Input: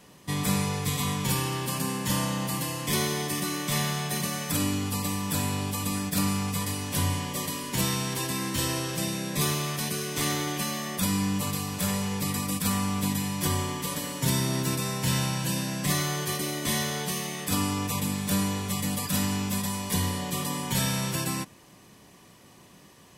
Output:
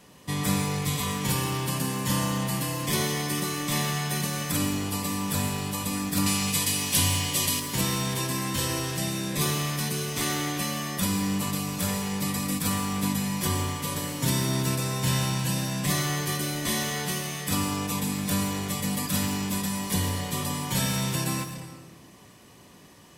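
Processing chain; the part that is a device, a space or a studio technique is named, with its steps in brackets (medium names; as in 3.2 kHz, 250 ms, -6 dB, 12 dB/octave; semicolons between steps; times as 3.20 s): 6.26–7.60 s: high-order bell 5.4 kHz +8.5 dB 2.8 oct; saturated reverb return (on a send at -4 dB: reverberation RT60 1.1 s, pre-delay 115 ms + saturation -29 dBFS, distortion -9 dB)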